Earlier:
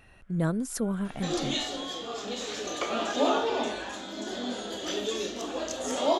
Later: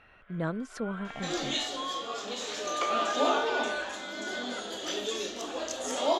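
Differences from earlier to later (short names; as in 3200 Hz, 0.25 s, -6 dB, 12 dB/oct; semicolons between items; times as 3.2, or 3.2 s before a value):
speech: add LPF 3500 Hz 12 dB/oct; first sound +10.5 dB; master: add low shelf 310 Hz -8.5 dB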